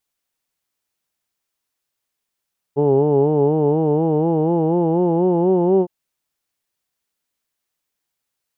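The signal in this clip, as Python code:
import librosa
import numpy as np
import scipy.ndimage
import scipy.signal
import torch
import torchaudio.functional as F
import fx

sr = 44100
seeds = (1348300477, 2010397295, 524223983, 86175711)

y = fx.formant_vowel(sr, seeds[0], length_s=3.11, hz=139.0, glide_st=5.0, vibrato_hz=4.1, vibrato_st=0.9, f1_hz=410.0, f2_hz=850.0, f3_hz=2900.0)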